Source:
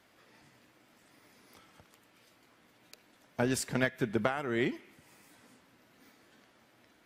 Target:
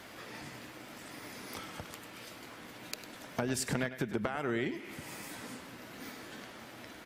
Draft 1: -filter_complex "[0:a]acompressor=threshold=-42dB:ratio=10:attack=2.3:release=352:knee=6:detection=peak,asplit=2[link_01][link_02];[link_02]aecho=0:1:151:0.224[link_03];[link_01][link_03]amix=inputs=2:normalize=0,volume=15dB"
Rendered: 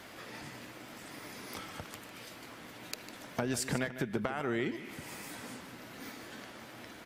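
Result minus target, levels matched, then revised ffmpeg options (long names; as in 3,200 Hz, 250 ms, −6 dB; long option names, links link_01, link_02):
echo 49 ms late
-filter_complex "[0:a]acompressor=threshold=-42dB:ratio=10:attack=2.3:release=352:knee=6:detection=peak,asplit=2[link_01][link_02];[link_02]aecho=0:1:102:0.224[link_03];[link_01][link_03]amix=inputs=2:normalize=0,volume=15dB"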